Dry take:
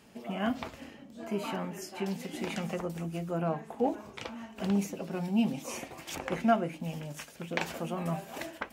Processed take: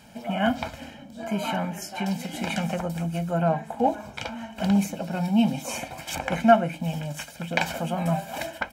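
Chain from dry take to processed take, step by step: comb 1.3 ms, depth 71%; trim +6 dB

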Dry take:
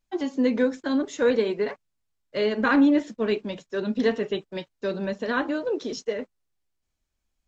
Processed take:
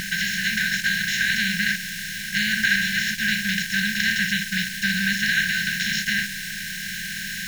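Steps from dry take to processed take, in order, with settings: spectral levelling over time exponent 0.2; word length cut 6-bit, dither none; brick-wall FIR band-stop 200–1500 Hz; reverse echo 206 ms -20.5 dB; trim +3.5 dB

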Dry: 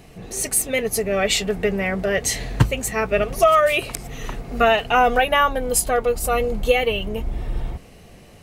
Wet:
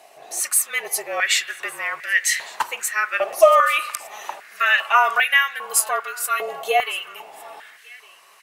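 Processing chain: treble shelf 4.7 kHz +6 dB; spring tank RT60 1.4 s, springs 35/41/46 ms, chirp 65 ms, DRR 15 dB; frequency shift -40 Hz; on a send: delay 1157 ms -22 dB; on the sum: step-sequenced high-pass 2.5 Hz 720–1900 Hz; trim -3.5 dB

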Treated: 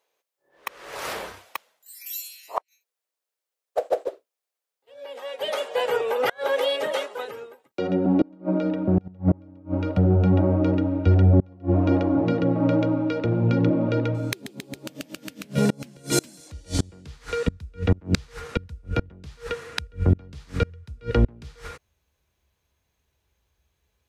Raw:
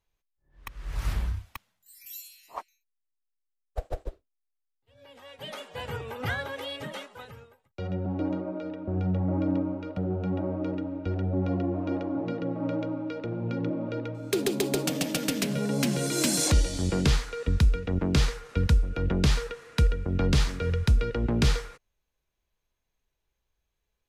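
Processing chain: high-pass sweep 490 Hz -> 71 Hz, 6.94–10.00 s; inverted gate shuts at -17 dBFS, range -31 dB; trim +8.5 dB

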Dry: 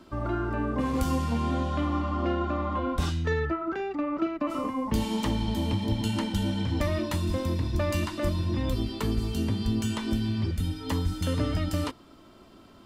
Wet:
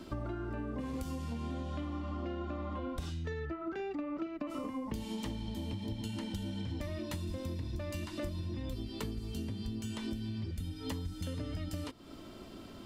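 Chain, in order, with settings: peaking EQ 1.1 kHz -5.5 dB 1.2 oct; compression 10:1, threshold -40 dBFS, peak gain reduction 18.5 dB; trim +4.5 dB

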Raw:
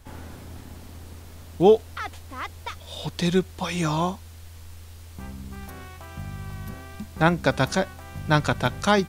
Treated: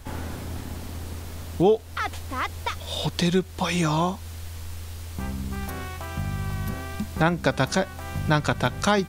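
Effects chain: compression 2:1, threshold -31 dBFS, peak gain reduction 11 dB; trim +7 dB

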